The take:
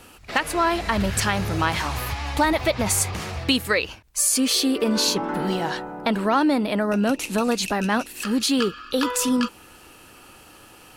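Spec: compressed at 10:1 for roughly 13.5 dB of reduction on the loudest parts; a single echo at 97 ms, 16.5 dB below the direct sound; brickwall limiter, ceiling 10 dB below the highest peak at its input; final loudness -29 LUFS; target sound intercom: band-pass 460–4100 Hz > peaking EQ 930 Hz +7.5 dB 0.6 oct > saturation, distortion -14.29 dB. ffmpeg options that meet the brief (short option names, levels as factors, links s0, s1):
-af "acompressor=threshold=0.0316:ratio=10,alimiter=level_in=1.12:limit=0.0631:level=0:latency=1,volume=0.891,highpass=460,lowpass=4100,equalizer=f=930:t=o:w=0.6:g=7.5,aecho=1:1:97:0.15,asoftclip=threshold=0.0335,volume=2.99"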